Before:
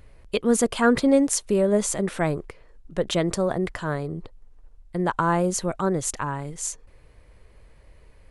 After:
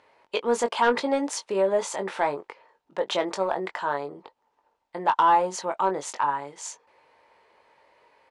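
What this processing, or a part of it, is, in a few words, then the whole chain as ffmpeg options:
intercom: -filter_complex "[0:a]highpass=480,lowpass=4900,equalizer=frequency=900:width_type=o:width=0.31:gain=12,asoftclip=type=tanh:threshold=-11.5dB,asplit=2[link_01][link_02];[link_02]adelay=21,volume=-7.5dB[link_03];[link_01][link_03]amix=inputs=2:normalize=0"

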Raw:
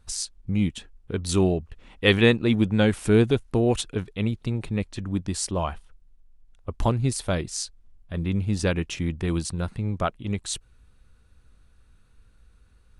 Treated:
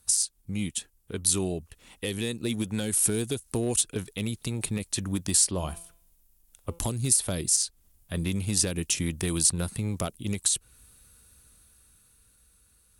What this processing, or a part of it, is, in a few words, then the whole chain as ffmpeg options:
FM broadcast chain: -filter_complex "[0:a]highpass=frequency=77:poles=1,dynaudnorm=framelen=310:gausssize=11:maxgain=8dB,acrossover=split=500|4100[link_01][link_02][link_03];[link_01]acompressor=threshold=-20dB:ratio=4[link_04];[link_02]acompressor=threshold=-33dB:ratio=4[link_05];[link_03]acompressor=threshold=-35dB:ratio=4[link_06];[link_04][link_05][link_06]amix=inputs=3:normalize=0,aemphasis=mode=production:type=50fm,alimiter=limit=-13dB:level=0:latency=1:release=151,asoftclip=type=hard:threshold=-15dB,lowpass=frequency=15000:width=0.5412,lowpass=frequency=15000:width=1.3066,aemphasis=mode=production:type=50fm,asettb=1/sr,asplit=3[link_07][link_08][link_09];[link_07]atrim=end=5.444[link_10];[link_08]atrim=start=5.44:end=6.79,asetpts=PTS-STARTPTS,afade=type=in:duration=0.004:curve=qsin,afade=type=out:start_time=1.346:duration=0.004:curve=qsin,bandreject=frequency=169.2:width_type=h:width=4,bandreject=frequency=338.4:width_type=h:width=4,bandreject=frequency=507.6:width_type=h:width=4,bandreject=frequency=676.8:width_type=h:width=4,bandreject=frequency=846:width_type=h:width=4,bandreject=frequency=1015.2:width_type=h:width=4,bandreject=frequency=1184.4:width_type=h:width=4,bandreject=frequency=1353.6:width_type=h:width=4,bandreject=frequency=1522.8:width_type=h:width=4,bandreject=frequency=1692:width_type=h:width=4,bandreject=frequency=1861.2:width_type=h:width=4,bandreject=frequency=2030.4:width_type=h:width=4,bandreject=frequency=2199.6:width_type=h:width=4,bandreject=frequency=2368.8:width_type=h:width=4,bandreject=frequency=2538:width_type=h:width=4,bandreject=frequency=2707.2:width_type=h:width=4,bandreject=frequency=2876.4:width_type=h:width=4,bandreject=frequency=3045.6:width_type=h:width=4,bandreject=frequency=3214.8:width_type=h:width=4,bandreject=frequency=3384:width_type=h:width=4,bandreject=frequency=3553.2:width_type=h:width=4,bandreject=frequency=3722.4:width_type=h:width=4,bandreject=frequency=3891.6:width_type=h:width=4,bandreject=frequency=4060.8:width_type=h:width=4,bandreject=frequency=4230:width_type=h:width=4,bandreject=frequency=4399.2:width_type=h:width=4,bandreject=frequency=4568.4:width_type=h:width=4,bandreject=frequency=4737.6:width_type=h:width=4,bandreject=frequency=4906.8:width_type=h:width=4[link_11];[link_09]atrim=start=6.786[link_12];[link_10][link_11]acrossfade=duration=0.004:curve1=hsin:curve2=qsin[link_13];[link_13][link_12]acrossfade=duration=0.004:curve1=qsin:curve2=hsin,volume=-5dB"

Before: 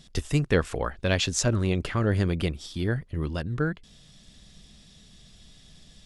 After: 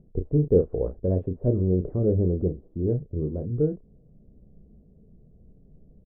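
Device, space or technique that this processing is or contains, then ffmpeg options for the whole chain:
under water: -filter_complex "[0:a]lowpass=frequency=540:width=0.5412,lowpass=frequency=540:width=1.3066,equalizer=frequency=440:width_type=o:width=0.56:gain=7,asplit=2[link_01][link_02];[link_02]adelay=33,volume=-7.5dB[link_03];[link_01][link_03]amix=inputs=2:normalize=0"

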